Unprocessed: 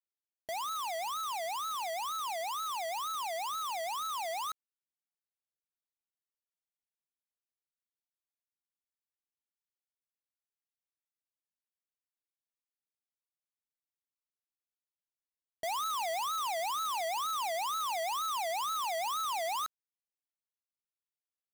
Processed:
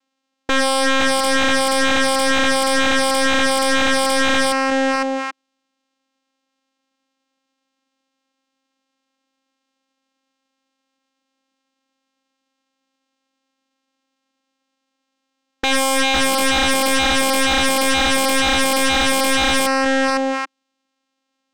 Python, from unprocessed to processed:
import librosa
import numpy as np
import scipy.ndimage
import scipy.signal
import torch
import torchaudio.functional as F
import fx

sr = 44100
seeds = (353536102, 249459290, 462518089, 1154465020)

y = fx.echo_multitap(x, sr, ms=(504, 783), db=(-8.0, -14.5))
y = fx.vocoder(y, sr, bands=4, carrier='saw', carrier_hz=267.0)
y = fx.fold_sine(y, sr, drive_db=16, ceiling_db=-22.0)
y = y * 10.0 ** (9.0 / 20.0)